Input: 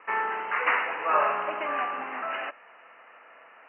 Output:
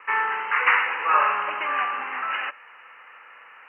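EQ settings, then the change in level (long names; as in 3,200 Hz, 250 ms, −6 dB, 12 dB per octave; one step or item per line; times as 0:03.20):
high-pass filter 63 Hz
parametric band 260 Hz −12.5 dB 2.4 octaves
parametric band 660 Hz −15 dB 0.22 octaves
+7.5 dB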